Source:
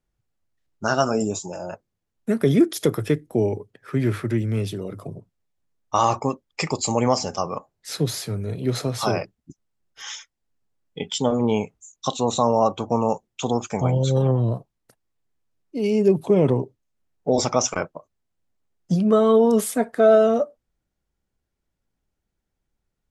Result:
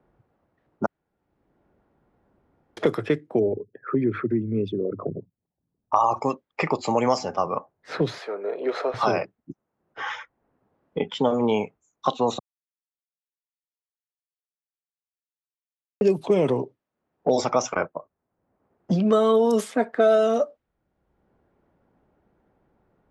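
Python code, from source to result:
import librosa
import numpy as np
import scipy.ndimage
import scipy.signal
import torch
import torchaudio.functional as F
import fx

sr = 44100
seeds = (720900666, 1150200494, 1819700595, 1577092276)

y = fx.envelope_sharpen(x, sr, power=2.0, at=(3.38, 6.16), fade=0.02)
y = fx.highpass(y, sr, hz=420.0, slope=24, at=(8.18, 8.94))
y = fx.edit(y, sr, fx.room_tone_fill(start_s=0.86, length_s=1.91),
    fx.silence(start_s=12.39, length_s=3.62), tone=tone)
y = fx.highpass(y, sr, hz=330.0, slope=6)
y = fx.env_lowpass(y, sr, base_hz=970.0, full_db=-14.5)
y = fx.band_squash(y, sr, depth_pct=70)
y = y * librosa.db_to_amplitude(2.0)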